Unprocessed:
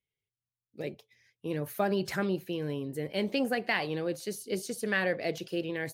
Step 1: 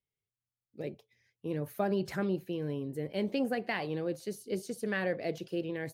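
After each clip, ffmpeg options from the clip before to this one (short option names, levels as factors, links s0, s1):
-af "tiltshelf=f=970:g=3.5,volume=0.631"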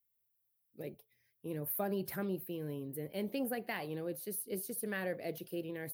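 -af "aexciter=amount=14.5:drive=2.3:freq=10000,volume=0.531"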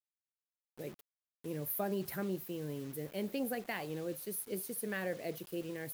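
-af "acrusher=bits=8:mix=0:aa=0.000001"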